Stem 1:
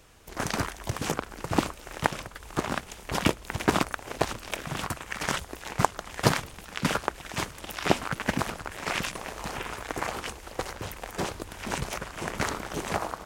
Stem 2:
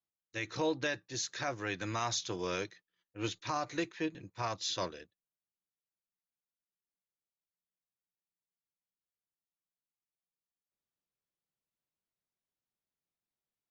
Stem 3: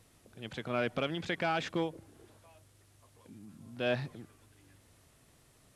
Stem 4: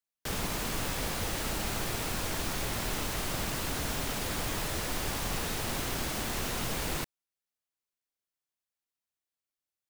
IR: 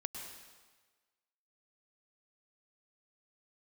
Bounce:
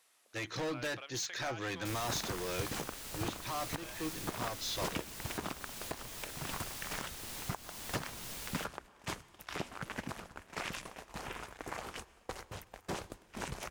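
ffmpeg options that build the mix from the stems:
-filter_complex "[0:a]agate=range=-17dB:threshold=-36dB:ratio=16:detection=peak,adelay=1700,volume=-9.5dB,asplit=2[a][b];[b]volume=-14dB[c];[1:a]volume=36dB,asoftclip=hard,volume=-36dB,volume=2dB[d];[2:a]highpass=860,acompressor=threshold=-50dB:ratio=2,volume=-2dB[e];[3:a]highshelf=f=2.3k:g=10,adelay=1600,volume=-16dB[f];[4:a]atrim=start_sample=2205[g];[c][g]afir=irnorm=-1:irlink=0[h];[a][d][e][f][h]amix=inputs=5:normalize=0,alimiter=limit=-24dB:level=0:latency=1:release=327"

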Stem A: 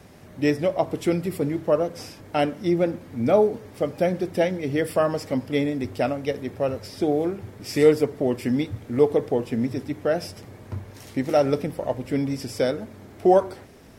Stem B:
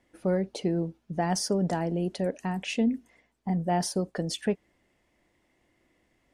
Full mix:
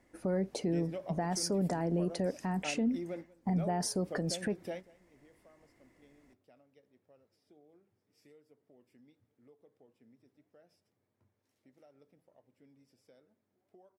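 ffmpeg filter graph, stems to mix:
-filter_complex "[0:a]highpass=130,acompressor=threshold=-21dB:ratio=5,adelay=300,volume=-15dB,asplit=2[a][b];[b]volume=-22.5dB[c];[1:a]equalizer=f=3.2k:w=2.2:g=-8,volume=1.5dB,asplit=2[d][e];[e]apad=whole_len=629779[f];[a][f]sidechaingate=range=-46dB:threshold=-58dB:ratio=16:detection=peak[g];[c]aecho=0:1:188:1[h];[g][d][h]amix=inputs=3:normalize=0,alimiter=limit=-23.5dB:level=0:latency=1:release=148"

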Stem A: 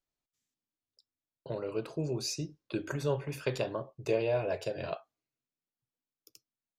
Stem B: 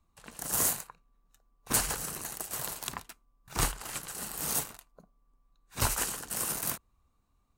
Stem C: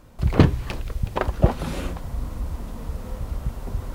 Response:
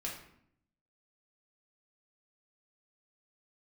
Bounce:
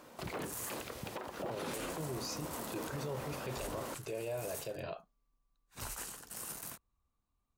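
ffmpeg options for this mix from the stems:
-filter_complex "[0:a]volume=-3.5dB[a];[1:a]volume=-10.5dB[b];[2:a]highpass=320,acrusher=bits=7:mode=log:mix=0:aa=0.000001,acompressor=threshold=-30dB:ratio=10,volume=1dB[c];[a][b][c]amix=inputs=3:normalize=0,alimiter=level_in=7dB:limit=-24dB:level=0:latency=1:release=30,volume=-7dB"

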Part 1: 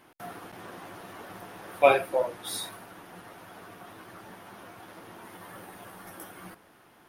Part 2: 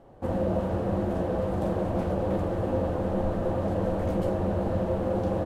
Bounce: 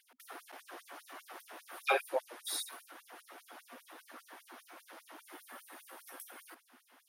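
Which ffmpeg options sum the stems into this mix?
-filter_complex "[0:a]aeval=exprs='val(0)+0.00355*(sin(2*PI*50*n/s)+sin(2*PI*2*50*n/s)/2+sin(2*PI*3*50*n/s)/3+sin(2*PI*4*50*n/s)/4+sin(2*PI*5*50*n/s)/5)':c=same,asoftclip=type=tanh:threshold=-11dB,volume=-2.5dB,asplit=2[a][b];[1:a]tiltshelf=f=1.1k:g=-6.5,flanger=delay=16.5:depth=3.5:speed=2.2,highshelf=f=2.4k:g=-9.5,adelay=1000,volume=-17dB[c];[b]apad=whole_len=284482[d];[c][d]sidechaincompress=threshold=-46dB:ratio=3:attack=30:release=1120[e];[a][e]amix=inputs=2:normalize=0,asubboost=boost=10:cutoff=140,afftfilt=real='re*gte(b*sr/1024,230*pow(5500/230,0.5+0.5*sin(2*PI*5*pts/sr)))':imag='im*gte(b*sr/1024,230*pow(5500/230,0.5+0.5*sin(2*PI*5*pts/sr)))':win_size=1024:overlap=0.75"

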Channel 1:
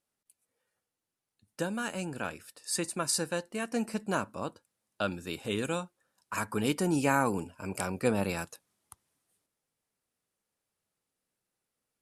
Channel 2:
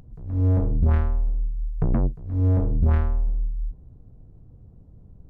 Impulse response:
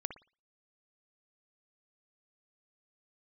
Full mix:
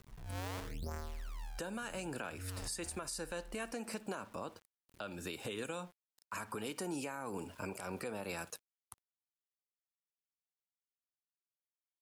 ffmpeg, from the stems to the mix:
-filter_complex "[0:a]acompressor=threshold=-33dB:ratio=4,volume=2dB,asplit=3[a][b][c];[b]volume=-9.5dB[d];[1:a]acrusher=samples=31:mix=1:aa=0.000001:lfo=1:lforange=49.6:lforate=0.79,volume=-12dB,asplit=2[e][f];[f]volume=-23dB[g];[c]apad=whole_len=233354[h];[e][h]sidechaincompress=threshold=-46dB:ratio=10:attack=16:release=520[i];[2:a]atrim=start_sample=2205[j];[d][g]amix=inputs=2:normalize=0[k];[k][j]afir=irnorm=-1:irlink=0[l];[a][i][l]amix=inputs=3:normalize=0,acrossover=split=320[m][n];[m]acompressor=threshold=-42dB:ratio=6[o];[o][n]amix=inputs=2:normalize=0,aeval=exprs='val(0)*gte(abs(val(0)),0.00158)':c=same,alimiter=level_in=7dB:limit=-24dB:level=0:latency=1:release=187,volume=-7dB"

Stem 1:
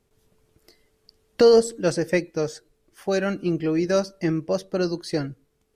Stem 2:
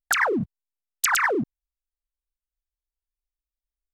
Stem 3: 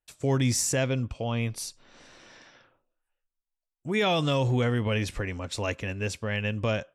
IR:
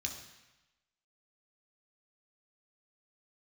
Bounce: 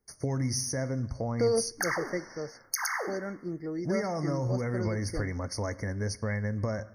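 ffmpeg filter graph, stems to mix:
-filter_complex "[0:a]volume=-12dB[a];[1:a]highpass=f=470:w=0.5412,highpass=f=470:w=1.3066,alimiter=limit=-17.5dB:level=0:latency=1:release=278,adelay=1700,volume=0.5dB,asplit=2[b][c];[c]volume=-6.5dB[d];[2:a]volume=1.5dB,asplit=2[e][f];[f]volume=-17dB[g];[b][e]amix=inputs=2:normalize=0,highshelf=f=7.2k:g=8.5,acompressor=threshold=-29dB:ratio=6,volume=0dB[h];[3:a]atrim=start_sample=2205[i];[d][g]amix=inputs=2:normalize=0[j];[j][i]afir=irnorm=-1:irlink=0[k];[a][h][k]amix=inputs=3:normalize=0,afftfilt=real='re*eq(mod(floor(b*sr/1024/2200),2),0)':imag='im*eq(mod(floor(b*sr/1024/2200),2),0)':win_size=1024:overlap=0.75"

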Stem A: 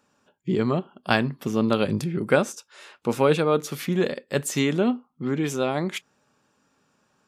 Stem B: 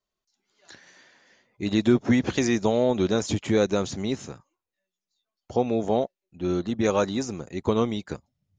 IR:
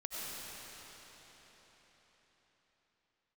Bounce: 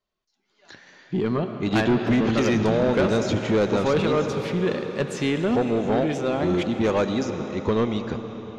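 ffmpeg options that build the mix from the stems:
-filter_complex "[0:a]adelay=650,volume=-1.5dB,asplit=2[a][b];[b]volume=-7dB[c];[1:a]volume=2dB,asplit=2[d][e];[e]volume=-10dB[f];[2:a]atrim=start_sample=2205[g];[c][f]amix=inputs=2:normalize=0[h];[h][g]afir=irnorm=-1:irlink=0[i];[a][d][i]amix=inputs=3:normalize=0,lowpass=4.5k,asoftclip=type=tanh:threshold=-14.5dB"

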